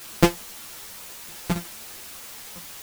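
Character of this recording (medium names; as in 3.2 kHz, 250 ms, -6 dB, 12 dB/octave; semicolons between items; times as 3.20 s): a buzz of ramps at a fixed pitch in blocks of 256 samples; tremolo saw down 4.5 Hz, depth 90%; a quantiser's noise floor 8-bit, dither triangular; a shimmering, thickened sound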